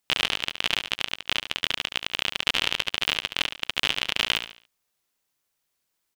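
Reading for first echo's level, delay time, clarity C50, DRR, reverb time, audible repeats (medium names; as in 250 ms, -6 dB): -9.0 dB, 71 ms, no reverb, no reverb, no reverb, 3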